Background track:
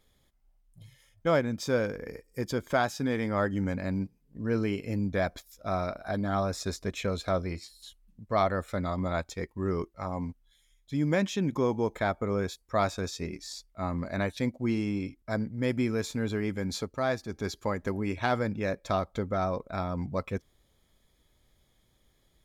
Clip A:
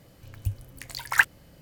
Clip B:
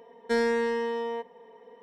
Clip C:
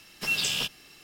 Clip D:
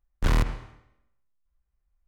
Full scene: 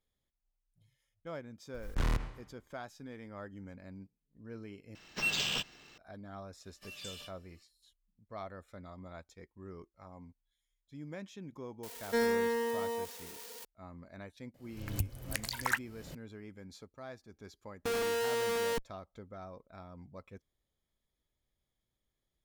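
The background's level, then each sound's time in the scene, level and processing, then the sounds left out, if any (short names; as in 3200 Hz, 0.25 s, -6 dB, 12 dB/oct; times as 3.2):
background track -18 dB
1.74 add D -9 dB + backwards sustainer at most 95 dB/s
4.95 replace with C -3 dB + decimation joined by straight lines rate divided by 4×
6.6 add C -6.5 dB + resonator 590 Hz, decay 0.16 s, mix 90%
11.83 add B -4.5 dB + switching spikes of -29.5 dBFS
14.54 add A -14 dB + recorder AGC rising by 56 dB/s
17.56 add B -2 dB + Schmitt trigger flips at -37.5 dBFS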